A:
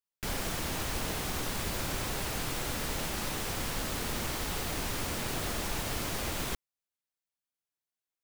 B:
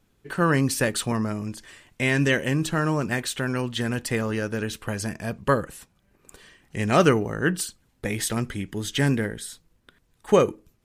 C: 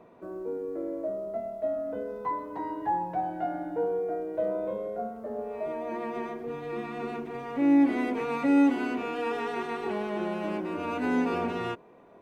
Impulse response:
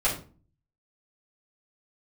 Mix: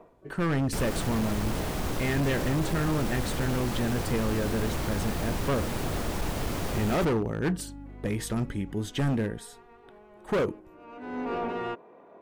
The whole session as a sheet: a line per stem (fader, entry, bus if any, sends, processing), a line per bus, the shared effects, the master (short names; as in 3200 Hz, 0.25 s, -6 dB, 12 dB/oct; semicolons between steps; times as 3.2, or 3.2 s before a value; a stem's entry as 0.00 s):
+1.5 dB, 0.50 s, no send, hum 50 Hz, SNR 16 dB
-5.0 dB, 0.00 s, no send, dry
-10.5 dB, 0.00 s, no send, overdrive pedal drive 20 dB, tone 3100 Hz, clips at -13 dBFS; auto duck -21 dB, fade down 0.30 s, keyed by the second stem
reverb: off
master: tilt shelf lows +5 dB, about 1200 Hz; overloaded stage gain 22.5 dB